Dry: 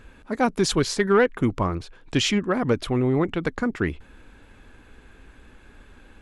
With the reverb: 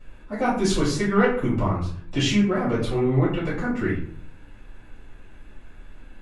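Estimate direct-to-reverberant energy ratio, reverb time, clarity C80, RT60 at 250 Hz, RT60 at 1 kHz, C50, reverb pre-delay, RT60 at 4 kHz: −12.0 dB, 0.50 s, 8.5 dB, 0.75 s, 0.50 s, 4.0 dB, 3 ms, 0.35 s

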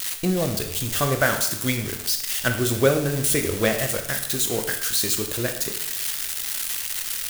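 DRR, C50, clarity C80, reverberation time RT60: 4.5 dB, 8.0 dB, 10.5 dB, 0.75 s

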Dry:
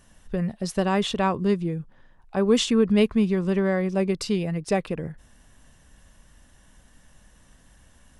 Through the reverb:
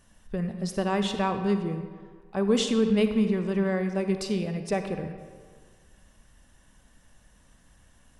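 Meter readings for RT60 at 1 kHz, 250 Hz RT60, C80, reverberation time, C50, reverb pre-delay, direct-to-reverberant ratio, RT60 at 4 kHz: 1.8 s, 1.6 s, 8.5 dB, 1.7 s, 7.5 dB, 39 ms, 7.0 dB, 1.0 s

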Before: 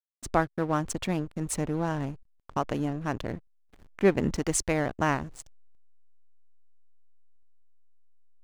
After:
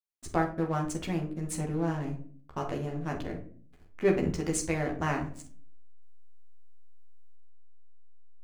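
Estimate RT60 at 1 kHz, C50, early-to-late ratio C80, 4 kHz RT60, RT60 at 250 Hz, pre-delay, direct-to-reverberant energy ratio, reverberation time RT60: 0.40 s, 9.5 dB, 14.5 dB, 0.30 s, 0.70 s, 12 ms, −0.5 dB, 0.45 s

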